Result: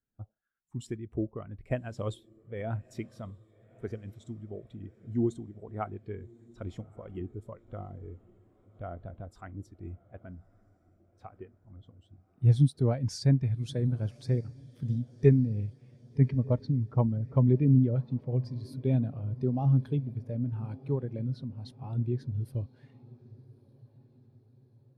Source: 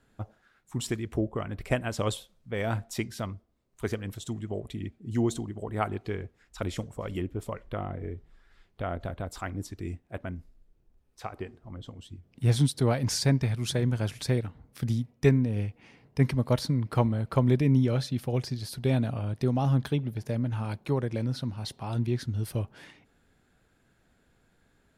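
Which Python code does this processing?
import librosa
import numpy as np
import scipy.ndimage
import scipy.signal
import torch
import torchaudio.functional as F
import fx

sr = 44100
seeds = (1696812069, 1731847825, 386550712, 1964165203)

y = fx.filter_lfo_lowpass(x, sr, shape='sine', hz=8.3, low_hz=620.0, high_hz=5200.0, q=0.84, at=(16.25, 18.44), fade=0.02)
y = fx.echo_diffused(y, sr, ms=1166, feedback_pct=62, wet_db=-15.0)
y = fx.spectral_expand(y, sr, expansion=1.5)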